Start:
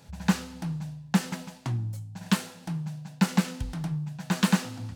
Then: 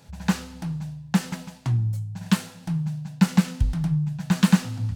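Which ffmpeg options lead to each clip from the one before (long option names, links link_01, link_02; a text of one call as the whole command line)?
ffmpeg -i in.wav -af "asubboost=boost=4.5:cutoff=170,volume=1dB" out.wav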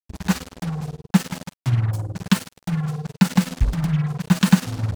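ffmpeg -i in.wav -af "tremolo=f=19:d=0.59,acrusher=bits=5:mix=0:aa=0.5,volume=5.5dB" out.wav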